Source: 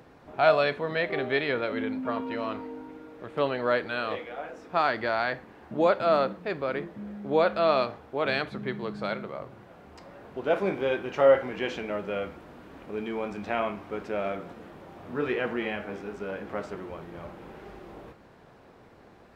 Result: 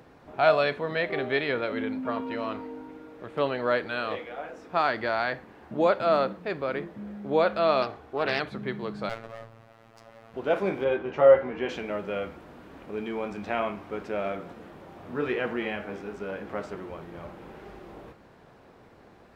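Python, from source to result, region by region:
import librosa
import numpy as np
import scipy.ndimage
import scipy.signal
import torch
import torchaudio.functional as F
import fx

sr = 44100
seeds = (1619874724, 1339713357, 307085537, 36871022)

y = fx.chain(x, sr, fx.comb(ms=2.7, depth=0.33),
    fx.doppler_dist(depth_ms=0.21), at=(7.82, 8.4))
y = fx.chain(y, sr, fx.lower_of_two(delay_ms=7.3),
    fx.peak_eq(hz=350.0, db=-7.5, octaves=0.24),
    fx.robotise(hz=113.0), at=(9.09, 10.34))
y = fx.chain(y, sr, fx.lowpass(hz=1700.0, slope=6),
    fx.doubler(ms=13.0, db=-6), at=(10.84, 11.69))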